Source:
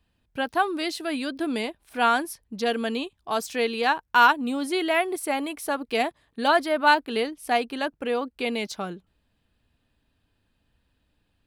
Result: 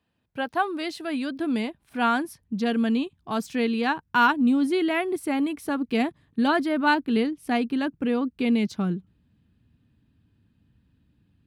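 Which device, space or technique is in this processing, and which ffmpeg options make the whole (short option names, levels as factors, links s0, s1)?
behind a face mask: -af "highpass=140,highshelf=f=3300:g=-8,asubboost=boost=10:cutoff=190"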